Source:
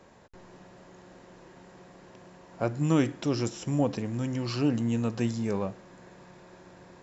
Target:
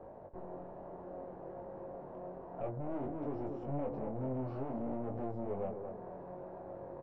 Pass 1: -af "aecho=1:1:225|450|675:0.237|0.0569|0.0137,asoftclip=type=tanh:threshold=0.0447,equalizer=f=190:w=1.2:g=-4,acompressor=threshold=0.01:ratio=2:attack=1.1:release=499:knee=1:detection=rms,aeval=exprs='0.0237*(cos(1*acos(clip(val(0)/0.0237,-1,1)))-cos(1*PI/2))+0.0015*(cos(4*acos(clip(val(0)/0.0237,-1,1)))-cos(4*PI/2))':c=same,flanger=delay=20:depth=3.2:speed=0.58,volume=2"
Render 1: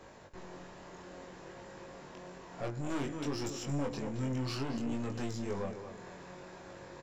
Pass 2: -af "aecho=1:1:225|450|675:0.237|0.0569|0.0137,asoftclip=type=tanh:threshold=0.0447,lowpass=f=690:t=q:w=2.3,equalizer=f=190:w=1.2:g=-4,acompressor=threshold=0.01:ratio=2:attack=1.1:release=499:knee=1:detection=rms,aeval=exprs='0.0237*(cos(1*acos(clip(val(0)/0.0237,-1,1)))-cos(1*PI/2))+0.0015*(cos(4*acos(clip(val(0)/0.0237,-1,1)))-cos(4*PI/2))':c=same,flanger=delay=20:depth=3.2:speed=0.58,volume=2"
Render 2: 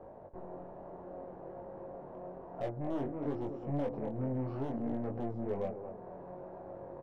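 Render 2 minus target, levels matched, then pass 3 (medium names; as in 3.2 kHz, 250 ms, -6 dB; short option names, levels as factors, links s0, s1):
saturation: distortion -5 dB
-af "aecho=1:1:225|450|675:0.237|0.0569|0.0137,asoftclip=type=tanh:threshold=0.0158,lowpass=f=690:t=q:w=2.3,equalizer=f=190:w=1.2:g=-4,acompressor=threshold=0.01:ratio=2:attack=1.1:release=499:knee=1:detection=rms,aeval=exprs='0.0237*(cos(1*acos(clip(val(0)/0.0237,-1,1)))-cos(1*PI/2))+0.0015*(cos(4*acos(clip(val(0)/0.0237,-1,1)))-cos(4*PI/2))':c=same,flanger=delay=20:depth=3.2:speed=0.58,volume=2"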